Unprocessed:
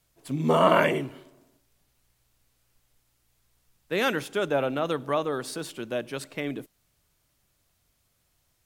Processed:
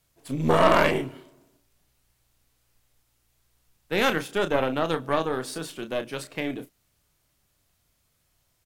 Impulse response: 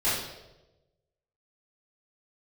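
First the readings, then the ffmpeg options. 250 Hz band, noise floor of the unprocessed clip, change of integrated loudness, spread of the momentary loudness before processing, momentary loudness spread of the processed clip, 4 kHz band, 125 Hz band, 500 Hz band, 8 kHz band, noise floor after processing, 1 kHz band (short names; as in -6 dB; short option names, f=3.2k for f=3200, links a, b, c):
+1.5 dB, -72 dBFS, +1.5 dB, 15 LU, 15 LU, +2.5 dB, +1.5 dB, +1.0 dB, +1.5 dB, -71 dBFS, +1.5 dB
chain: -filter_complex "[0:a]asplit=2[a][b];[b]adelay=31,volume=-8dB[c];[a][c]amix=inputs=2:normalize=0,aeval=exprs='0.562*(cos(1*acos(clip(val(0)/0.562,-1,1)))-cos(1*PI/2))+0.0708*(cos(6*acos(clip(val(0)/0.562,-1,1)))-cos(6*PI/2))':c=same"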